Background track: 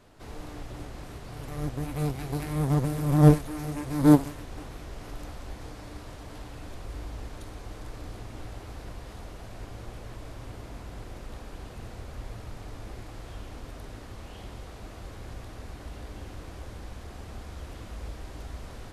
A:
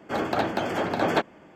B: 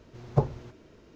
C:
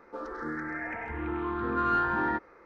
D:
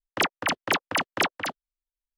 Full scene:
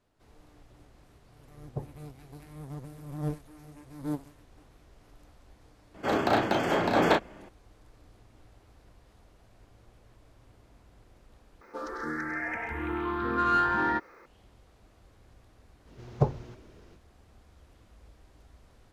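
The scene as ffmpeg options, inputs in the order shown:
-filter_complex "[2:a]asplit=2[a][b];[0:a]volume=-16.5dB[c];[a]tiltshelf=f=970:g=5.5[d];[1:a]asplit=2[e][f];[f]adelay=35,volume=-4dB[g];[e][g]amix=inputs=2:normalize=0[h];[3:a]crystalizer=i=3.5:c=0[i];[c]asplit=2[j][k];[j]atrim=end=11.614[l];[i]atrim=end=2.65[m];[k]atrim=start=14.256[n];[d]atrim=end=1.15,asetpts=PTS-STARTPTS,volume=-17dB,afade=t=in:d=0.004:c=hsin,afade=t=out:st=1.146:d=0.004:c=hsin,adelay=1390[o];[h]atrim=end=1.55,asetpts=PTS-STARTPTS,volume=-0.5dB,afade=t=in:d=0.004:c=hsin,afade=t=out:st=1.546:d=0.004:c=hsin,adelay=5940[p];[b]atrim=end=1.15,asetpts=PTS-STARTPTS,volume=-1dB,afade=t=in:d=0.05,afade=t=out:st=1.1:d=0.05,adelay=15840[q];[l][m]acrossfade=d=0.004:c1=hsin:c2=hsin[r];[r][n]acrossfade=d=0.004:c1=hsin:c2=hsin[s];[s][o][p][q]amix=inputs=4:normalize=0"

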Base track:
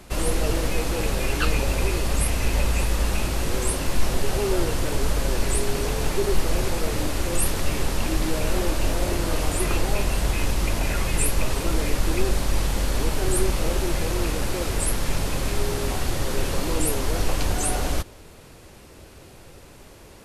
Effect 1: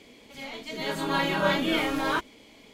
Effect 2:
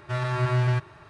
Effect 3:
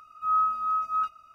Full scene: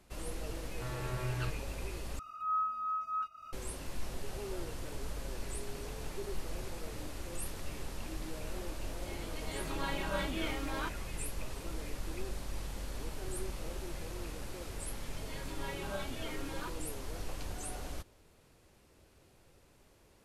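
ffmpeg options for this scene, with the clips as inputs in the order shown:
-filter_complex "[1:a]asplit=2[a][b];[0:a]volume=-17.5dB[c];[3:a]acompressor=mode=upward:threshold=-26dB:ratio=2.5:attack=3.7:release=233:knee=2.83:detection=peak[d];[b]asplit=2[e][f];[f]adelay=3.7,afreqshift=0.99[g];[e][g]amix=inputs=2:normalize=1[h];[c]asplit=2[i][j];[i]atrim=end=2.194[k];[d]atrim=end=1.34,asetpts=PTS-STARTPTS,volume=-9dB[l];[j]atrim=start=3.526[m];[2:a]atrim=end=1.09,asetpts=PTS-STARTPTS,volume=-14.5dB,afade=t=in:d=0.004:c=hsin,afade=t=out:st=1.086:d=0.004:c=hsin,adelay=710[n];[a]atrim=end=2.73,asetpts=PTS-STARTPTS,volume=-12dB,afade=t=in:d=0.004:c=hsin,afade=t=out:st=2.726:d=0.004:c=hsin,adelay=8690[o];[h]atrim=end=2.73,asetpts=PTS-STARTPTS,volume=-14.5dB,afade=t=in:d=0.004:c=hsin,afade=t=out:st=2.726:d=0.004:c=hsin,adelay=14490[p];[k][l]acrossfade=d=0.004:c1=hsin:c2=hsin[q];[q][m]acrossfade=d=0.004:c1=hsin:c2=hsin[r];[r][n][o][p]amix=inputs=4:normalize=0"

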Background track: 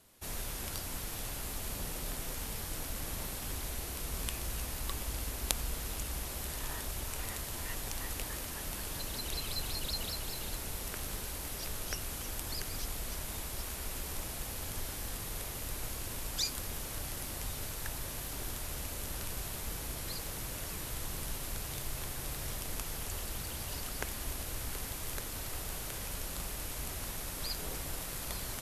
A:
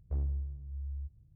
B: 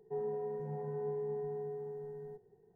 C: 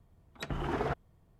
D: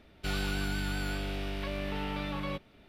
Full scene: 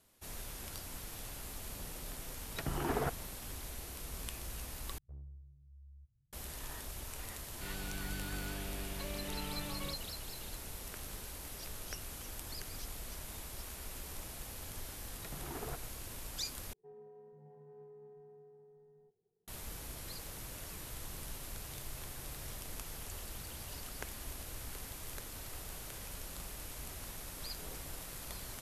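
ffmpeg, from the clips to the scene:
-filter_complex "[3:a]asplit=2[a][b];[0:a]volume=-6dB[c];[1:a]equalizer=f=130:w=7:g=9.5[d];[4:a]dynaudnorm=f=260:g=5:m=5dB[e];[2:a]adynamicsmooth=sensitivity=6.5:basefreq=1.7k[f];[c]asplit=3[g][h][i];[g]atrim=end=4.984[j];[d]atrim=end=1.35,asetpts=PTS-STARTPTS,volume=-17.5dB[k];[h]atrim=start=6.326:end=16.734[l];[f]atrim=end=2.75,asetpts=PTS-STARTPTS,volume=-17dB[m];[i]atrim=start=19.476[n];[a]atrim=end=1.39,asetpts=PTS-STARTPTS,volume=-2dB,afade=t=in:d=0.004:c=hsin,afade=t=out:st=1.386:d=0.004:c=hsin,adelay=2160[o];[e]atrim=end=2.88,asetpts=PTS-STARTPTS,volume=-13dB,afade=t=in:d=0.004:c=hsin,afade=t=out:st=2.876:d=0.004:c=hsin,adelay=7370[p];[b]atrim=end=1.39,asetpts=PTS-STARTPTS,volume=-12dB,afade=t=in:d=0.004:c=hsin,afade=t=out:st=1.386:d=0.004:c=hsin,adelay=14820[q];[j][k]acrossfade=d=0.004:c1=hsin:c2=hsin[r];[r][l]acrossfade=d=0.004:c1=hsin:c2=hsin[s];[s][m]acrossfade=d=0.004:c1=hsin:c2=hsin[t];[t][n]acrossfade=d=0.004:c1=hsin:c2=hsin[u];[u][o][p][q]amix=inputs=4:normalize=0"

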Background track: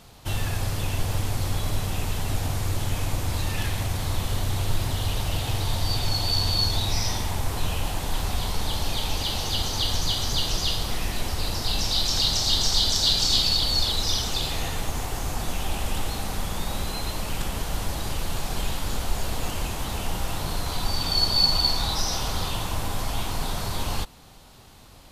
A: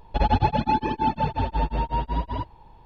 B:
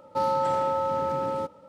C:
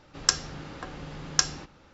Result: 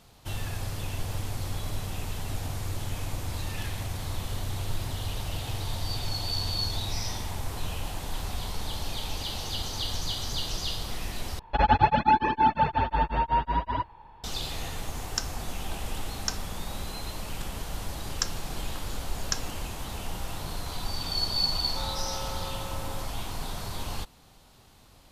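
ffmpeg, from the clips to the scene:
-filter_complex "[3:a]asplit=2[a][b];[0:a]volume=-6.5dB[c];[1:a]equalizer=f=1.5k:w=0.71:g=11.5[d];[a]afreqshift=-77[e];[c]asplit=2[f][g];[f]atrim=end=11.394[h];[d]atrim=end=2.85,asetpts=PTS-STARTPTS,volume=-4.5dB[i];[g]atrim=start=14.236[j];[e]atrim=end=1.93,asetpts=PTS-STARTPTS,volume=-8.5dB,afade=t=in:d=0.004:c=hsin,afade=t=out:st=1.926:d=0.004:c=hsin,adelay=14890[k];[b]atrim=end=1.93,asetpts=PTS-STARTPTS,volume=-7.5dB,afade=t=in:d=0.004:c=hsin,afade=t=out:st=1.926:d=0.004:c=hsin,adelay=17930[l];[2:a]atrim=end=1.68,asetpts=PTS-STARTPTS,volume=-14.5dB,afade=t=in:d=0.004:c=hsin,afade=t=out:st=1.676:d=0.004:c=hsin,adelay=21600[m];[h][i]acrossfade=d=0.004:c1=hsin:c2=hsin[n];[n][j]acrossfade=d=0.004:c1=hsin:c2=hsin[o];[o][k][l][m]amix=inputs=4:normalize=0"

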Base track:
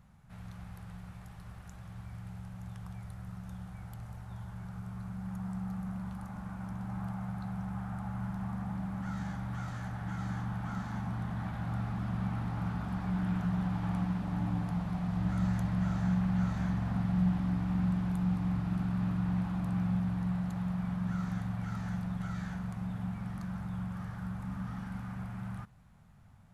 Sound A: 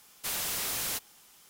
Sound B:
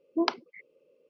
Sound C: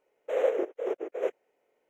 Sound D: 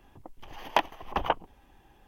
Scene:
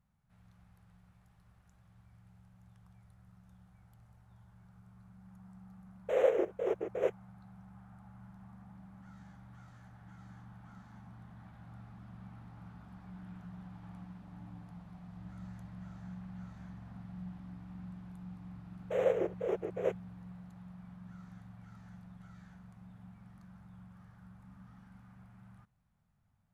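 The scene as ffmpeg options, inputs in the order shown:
-filter_complex "[3:a]asplit=2[a][b];[0:a]volume=-16.5dB[c];[a]agate=range=-33dB:threshold=-42dB:ratio=3:release=100:detection=peak[d];[b]dynaudnorm=f=100:g=3:m=12dB[e];[d]atrim=end=1.89,asetpts=PTS-STARTPTS,volume=-1.5dB,afade=t=in:d=0.004:c=hsin,afade=t=out:st=1.886:d=0.004:c=hsin,adelay=5800[f];[e]atrim=end=1.89,asetpts=PTS-STARTPTS,volume=-14.5dB,afade=t=in:d=0.004:c=hsin,afade=t=out:st=1.886:d=0.004:c=hsin,adelay=18620[g];[c][f][g]amix=inputs=3:normalize=0"

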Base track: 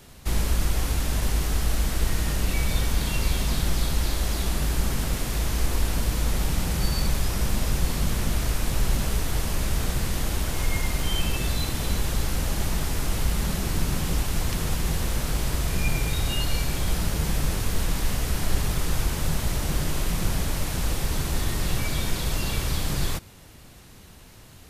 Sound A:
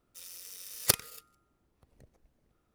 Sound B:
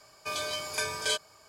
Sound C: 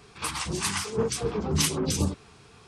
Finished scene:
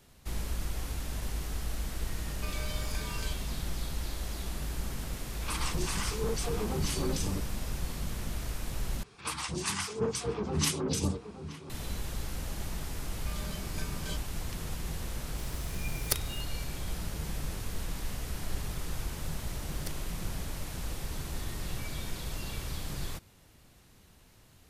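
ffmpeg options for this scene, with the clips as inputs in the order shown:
-filter_complex "[2:a]asplit=2[a][b];[3:a]asplit=2[c][d];[1:a]asplit=2[e][f];[0:a]volume=-11dB[g];[a]acompressor=threshold=-35dB:ratio=6:attack=3.2:release=140:knee=1:detection=peak[h];[c]alimiter=limit=-23dB:level=0:latency=1:release=28[i];[d]asplit=2[j][k];[k]adelay=874.6,volume=-11dB,highshelf=f=4k:g=-19.7[l];[j][l]amix=inputs=2:normalize=0[m];[e]asplit=2[n][o];[o]adelay=507.3,volume=-20dB,highshelf=f=4k:g=-11.4[p];[n][p]amix=inputs=2:normalize=0[q];[f]highshelf=f=11k:g=-8.5[r];[g]asplit=2[s][t];[s]atrim=end=9.034[u];[m]atrim=end=2.67,asetpts=PTS-STARTPTS,volume=-4.5dB[v];[t]atrim=start=11.696[w];[h]atrim=end=1.48,asetpts=PTS-STARTPTS,volume=-4.5dB,afade=t=in:d=0.004:c=hsin,afade=t=out:st=1.476:d=0.004:c=hsin,adelay=2170[x];[i]atrim=end=2.67,asetpts=PTS-STARTPTS,volume=-2.5dB,afade=t=in:d=0.004:c=hsin,afade=t=out:st=2.666:d=0.004:c=hsin,adelay=5260[y];[b]atrim=end=1.48,asetpts=PTS-STARTPTS,volume=-14dB,afade=t=in:d=0.004:c=hsin,afade=t=out:st=1.476:d=0.004:c=hsin,adelay=573300S[z];[q]atrim=end=2.74,asetpts=PTS-STARTPTS,volume=-5.5dB,afade=t=in:d=0.004:c=hsin,afade=t=out:st=2.736:d=0.004:c=hsin,adelay=15220[aa];[r]atrim=end=2.74,asetpts=PTS-STARTPTS,volume=-17.5dB,afade=t=in:d=0.004:c=hsin,afade=t=out:st=2.736:d=0.004:c=hsin,adelay=18970[ab];[u][v]acrossfade=d=0.004:c1=hsin:c2=hsin[ac];[ac][w]acrossfade=d=0.004:c1=hsin:c2=hsin[ad];[ad][x][y][z][aa][ab]amix=inputs=6:normalize=0"

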